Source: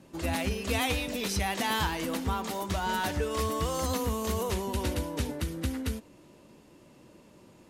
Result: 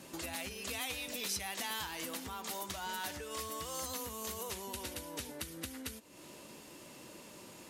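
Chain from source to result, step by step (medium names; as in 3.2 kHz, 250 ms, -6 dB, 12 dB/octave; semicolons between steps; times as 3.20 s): compression 5:1, threshold -45 dBFS, peak gain reduction 18 dB; tilt EQ +2.5 dB/octave; trim +5 dB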